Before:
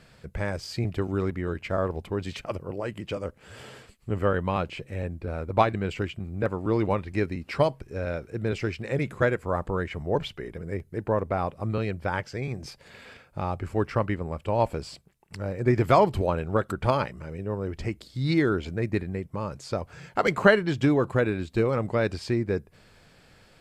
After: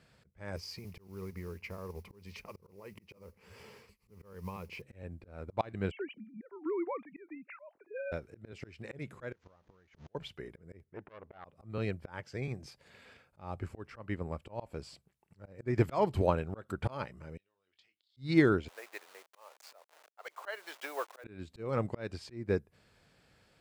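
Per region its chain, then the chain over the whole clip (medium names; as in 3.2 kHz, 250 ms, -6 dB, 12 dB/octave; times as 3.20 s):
0.56–4.82 s: compression 4:1, threshold -34 dBFS + modulation noise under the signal 21 dB + rippled EQ curve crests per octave 0.84, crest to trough 9 dB
5.91–8.12 s: formants replaced by sine waves + compression 2.5:1, threshold -29 dBFS
9.32–10.15 s: jump at every zero crossing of -30 dBFS + elliptic low-pass 6.5 kHz + inverted gate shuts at -22 dBFS, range -29 dB
10.84–11.45 s: Savitzky-Golay filter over 25 samples + bass shelf 250 Hz -9.5 dB + transformer saturation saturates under 1.4 kHz
17.37–18.17 s: compression 16:1, threshold -37 dBFS + band-pass filter 3.5 kHz, Q 3.3 + doubling 22 ms -7.5 dB
18.68–21.24 s: send-on-delta sampling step -37 dBFS + high-pass 590 Hz 24 dB/octave
whole clip: high-pass 41 Hz; slow attack 230 ms; upward expansion 1.5:1, over -39 dBFS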